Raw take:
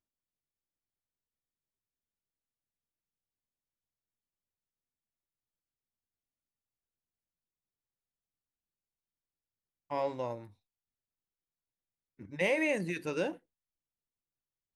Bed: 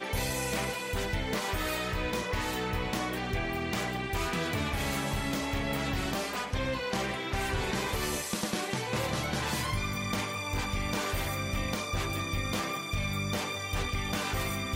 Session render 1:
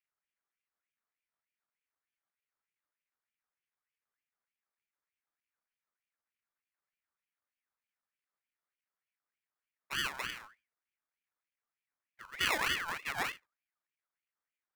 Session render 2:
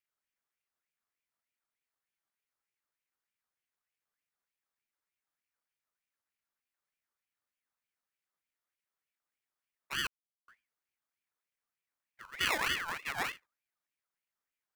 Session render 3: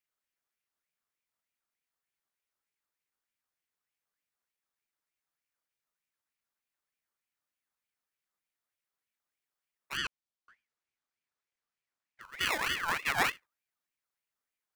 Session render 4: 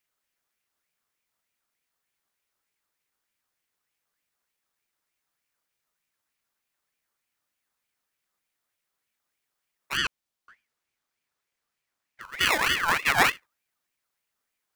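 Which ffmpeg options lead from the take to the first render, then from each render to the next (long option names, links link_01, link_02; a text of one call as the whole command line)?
ffmpeg -i in.wav -af "acrusher=samples=29:mix=1:aa=0.000001,aeval=exprs='val(0)*sin(2*PI*1800*n/s+1800*0.35/3.3*sin(2*PI*3.3*n/s))':channel_layout=same" out.wav
ffmpeg -i in.wav -filter_complex "[0:a]asplit=3[link_01][link_02][link_03];[link_01]atrim=end=10.07,asetpts=PTS-STARTPTS,afade=type=out:start_time=10.066:duration=0.004:curve=hsin[link_04];[link_02]atrim=start=10.07:end=10.48,asetpts=PTS-STARTPTS,volume=0[link_05];[link_03]atrim=start=10.48,asetpts=PTS-STARTPTS,afade=type=in:duration=0.004:curve=hsin[link_06];[link_04][link_05][link_06]concat=n=3:v=0:a=1" out.wav
ffmpeg -i in.wav -filter_complex "[0:a]asettb=1/sr,asplit=3[link_01][link_02][link_03];[link_01]atrim=end=9.974[link_04];[link_02]atrim=start=9.97:end=12.21,asetpts=PTS-STARTPTS,afade=type=in:duration=0.004:curve=qsin,afade=type=out:start_time=2.236:duration=0.004:curve=qsin,lowpass=6800[link_05];[link_03]atrim=start=12.206[link_06];[link_04][link_05]acrossfade=duration=0.004:curve1=hsin:curve2=qsin[link_07];[link_07][link_06]acrossfade=duration=0.004:curve1=qsin:curve2=hsin,asettb=1/sr,asplit=3[link_08][link_09][link_10];[link_08]atrim=end=12.834[link_11];[link_09]atrim=start=12.83:end=13.3,asetpts=PTS-STARTPTS,afade=type=in:duration=0.004:curve=qsin,afade=type=out:start_time=0.466:duration=0.004:curve=qsin,acontrast=77[link_12];[link_10]atrim=start=13.296[link_13];[link_11][link_12]acrossfade=duration=0.004:curve1=hsin:curve2=qsin[link_14];[link_14][link_13]acrossfade=duration=0.004:curve1=qsin:curve2=hsin" out.wav
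ffmpeg -i in.wav -af "volume=8dB" out.wav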